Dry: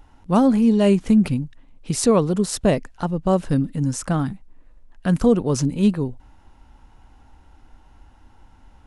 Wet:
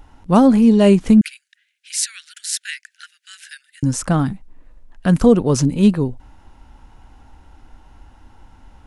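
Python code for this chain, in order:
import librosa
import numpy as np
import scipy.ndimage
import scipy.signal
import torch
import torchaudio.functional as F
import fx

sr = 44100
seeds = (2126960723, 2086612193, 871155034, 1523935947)

y = fx.steep_highpass(x, sr, hz=1500.0, slope=96, at=(1.21, 3.83))
y = F.gain(torch.from_numpy(y), 4.5).numpy()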